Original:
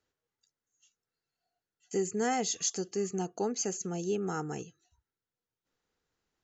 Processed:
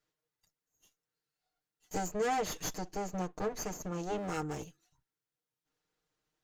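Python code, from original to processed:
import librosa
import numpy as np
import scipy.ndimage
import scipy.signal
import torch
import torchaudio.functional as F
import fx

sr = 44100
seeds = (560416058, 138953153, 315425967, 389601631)

y = fx.lower_of_two(x, sr, delay_ms=6.5)
y = fx.high_shelf(y, sr, hz=5100.0, db=-9.5, at=(2.08, 4.18))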